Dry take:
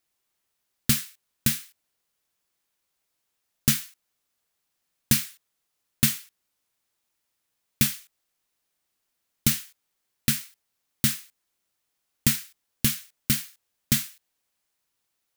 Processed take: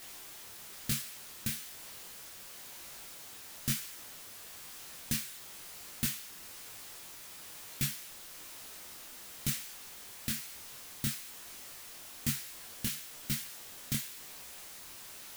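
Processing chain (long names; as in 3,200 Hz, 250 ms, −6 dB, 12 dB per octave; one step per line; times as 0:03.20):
converter with a step at zero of −30 dBFS
micro pitch shift up and down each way 36 cents
level −8 dB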